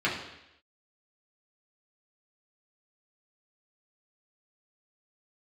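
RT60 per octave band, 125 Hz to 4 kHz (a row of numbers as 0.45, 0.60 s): 0.75, 0.80, 0.85, 0.85, 0.90, 0.90 s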